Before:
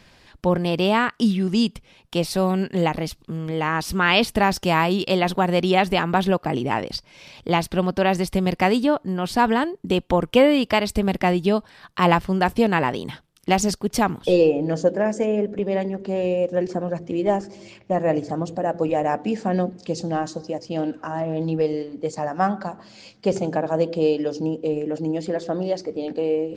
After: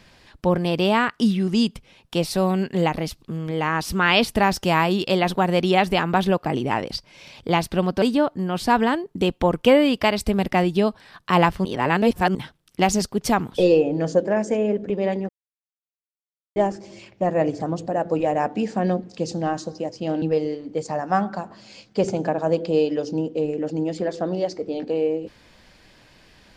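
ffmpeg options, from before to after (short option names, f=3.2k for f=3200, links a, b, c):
-filter_complex "[0:a]asplit=7[a][b][c][d][e][f][g];[a]atrim=end=8.022[h];[b]atrim=start=8.708:end=12.342[i];[c]atrim=start=12.338:end=13.042,asetpts=PTS-STARTPTS,areverse[j];[d]atrim=start=13.038:end=15.98,asetpts=PTS-STARTPTS,afade=t=out:st=2.938:d=0.004:c=hsin[k];[e]atrim=start=15.98:end=17.25,asetpts=PTS-STARTPTS,volume=0[l];[f]atrim=start=17.25:end=20.912,asetpts=PTS-STARTPTS,afade=t=in:d=0.004:c=hsin[m];[g]atrim=start=21.498[n];[h][i]acrossfade=d=0.004:c1=hsin:c2=hsin[o];[o][j]acrossfade=d=0.004:c1=hsin:c2=hsin[p];[k][l][m]concat=n=3:v=0:a=1[q];[p][q]acrossfade=d=0.004:c1=hsin:c2=hsin[r];[r][n]acrossfade=d=0.004:c1=hsin:c2=hsin"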